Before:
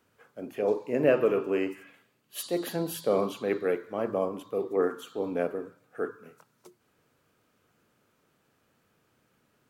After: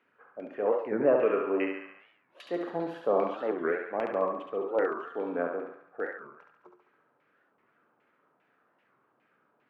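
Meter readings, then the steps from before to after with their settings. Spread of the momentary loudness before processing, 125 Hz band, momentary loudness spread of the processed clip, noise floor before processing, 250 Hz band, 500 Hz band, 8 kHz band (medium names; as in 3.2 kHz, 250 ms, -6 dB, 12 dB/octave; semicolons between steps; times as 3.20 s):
14 LU, -8.5 dB, 16 LU, -71 dBFS, -2.5 dB, -1.0 dB, under -25 dB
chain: high-pass 220 Hz 12 dB/octave; LFO low-pass saw down 2.5 Hz 790–2400 Hz; thinning echo 70 ms, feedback 61%, high-pass 520 Hz, level -4 dB; simulated room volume 860 m³, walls furnished, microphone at 0.32 m; warped record 45 rpm, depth 250 cents; trim -3 dB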